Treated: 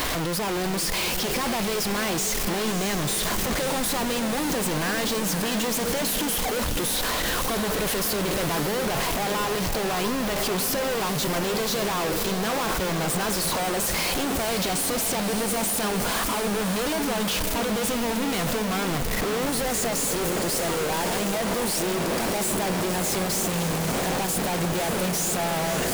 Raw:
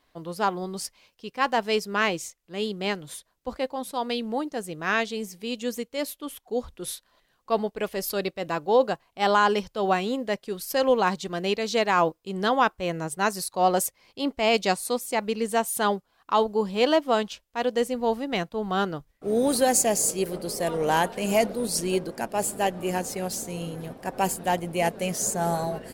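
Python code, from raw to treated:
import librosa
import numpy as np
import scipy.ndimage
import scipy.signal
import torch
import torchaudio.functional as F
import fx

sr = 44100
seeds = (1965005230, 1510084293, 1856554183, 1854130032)

p1 = np.sign(x) * np.sqrt(np.mean(np.square(x)))
y = p1 + fx.echo_diffused(p1, sr, ms=575, feedback_pct=68, wet_db=-8.0, dry=0)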